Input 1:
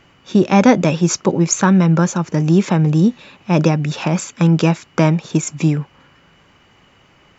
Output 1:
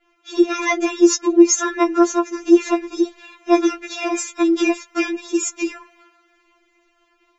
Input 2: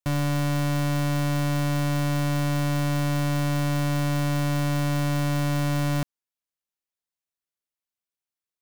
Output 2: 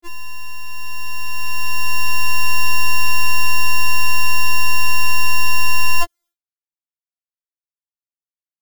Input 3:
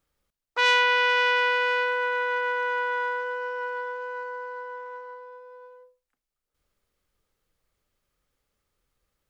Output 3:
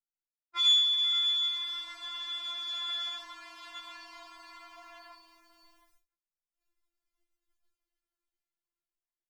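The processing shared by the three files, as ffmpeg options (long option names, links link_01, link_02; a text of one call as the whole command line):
ffmpeg -i in.wav -af "dynaudnorm=framelen=660:gausssize=5:maxgain=16dB,agate=range=-33dB:threshold=-44dB:ratio=3:detection=peak,afftfilt=real='re*4*eq(mod(b,16),0)':imag='im*4*eq(mod(b,16),0)':win_size=2048:overlap=0.75,volume=1.5dB" out.wav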